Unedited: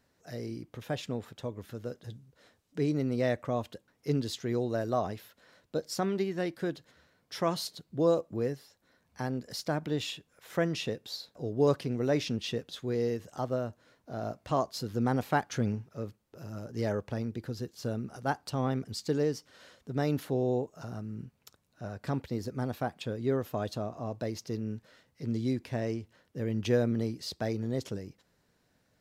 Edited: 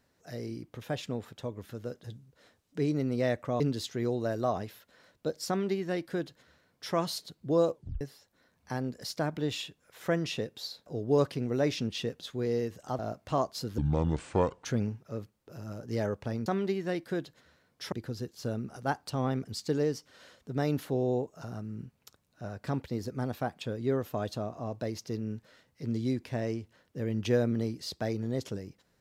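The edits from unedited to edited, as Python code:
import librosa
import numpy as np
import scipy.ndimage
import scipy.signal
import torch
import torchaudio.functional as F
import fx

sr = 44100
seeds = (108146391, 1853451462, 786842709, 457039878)

y = fx.edit(x, sr, fx.cut(start_s=3.6, length_s=0.49),
    fx.duplicate(start_s=5.97, length_s=1.46, to_s=17.32),
    fx.tape_stop(start_s=8.23, length_s=0.27),
    fx.cut(start_s=13.48, length_s=0.7),
    fx.speed_span(start_s=14.97, length_s=0.54, speed=0.62), tone=tone)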